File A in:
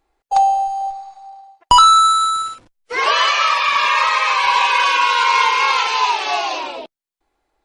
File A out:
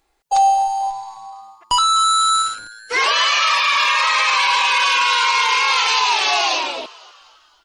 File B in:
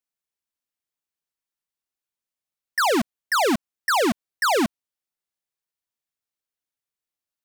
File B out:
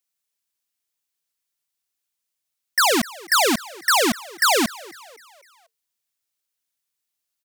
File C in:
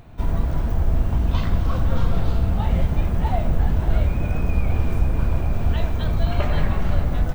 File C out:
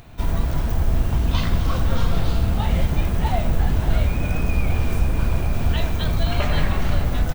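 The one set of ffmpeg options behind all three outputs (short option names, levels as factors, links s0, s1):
-filter_complex "[0:a]highshelf=f=2100:g=10,alimiter=limit=0.398:level=0:latency=1:release=14,asplit=5[s0][s1][s2][s3][s4];[s1]adelay=251,afreqshift=110,volume=0.0891[s5];[s2]adelay=502,afreqshift=220,volume=0.0457[s6];[s3]adelay=753,afreqshift=330,volume=0.0232[s7];[s4]adelay=1004,afreqshift=440,volume=0.0119[s8];[s0][s5][s6][s7][s8]amix=inputs=5:normalize=0"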